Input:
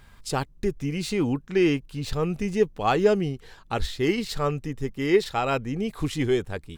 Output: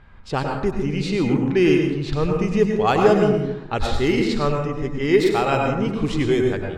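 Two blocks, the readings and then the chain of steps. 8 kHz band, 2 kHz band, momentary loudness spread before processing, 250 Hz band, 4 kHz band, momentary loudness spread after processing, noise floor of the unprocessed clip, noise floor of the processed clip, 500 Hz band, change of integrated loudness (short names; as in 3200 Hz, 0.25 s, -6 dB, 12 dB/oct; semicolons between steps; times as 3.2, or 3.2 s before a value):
-0.5 dB, +5.0 dB, 9 LU, +6.0 dB, +3.5 dB, 8 LU, -52 dBFS, -37 dBFS, +5.5 dB, +5.5 dB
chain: low-pass opened by the level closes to 2200 Hz, open at -18 dBFS; plate-style reverb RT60 1 s, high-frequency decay 0.4×, pre-delay 85 ms, DRR 1.5 dB; gain +3 dB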